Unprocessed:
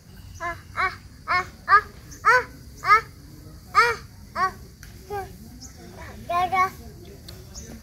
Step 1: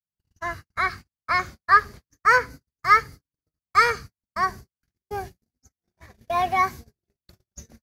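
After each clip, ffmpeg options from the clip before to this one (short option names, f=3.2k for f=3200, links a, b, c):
-af "agate=range=-58dB:threshold=-36dB:ratio=16:detection=peak"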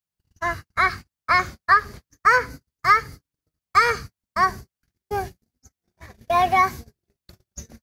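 -af "acompressor=threshold=-17dB:ratio=6,volume=5dB"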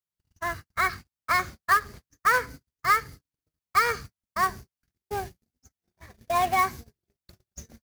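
-af "acrusher=bits=3:mode=log:mix=0:aa=0.000001,volume=-5.5dB"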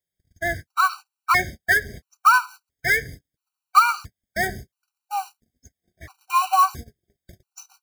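-af "afftfilt=real='re*gt(sin(2*PI*0.74*pts/sr)*(1-2*mod(floor(b*sr/1024/770),2)),0)':imag='im*gt(sin(2*PI*0.74*pts/sr)*(1-2*mod(floor(b*sr/1024/770),2)),0)':win_size=1024:overlap=0.75,volume=8dB"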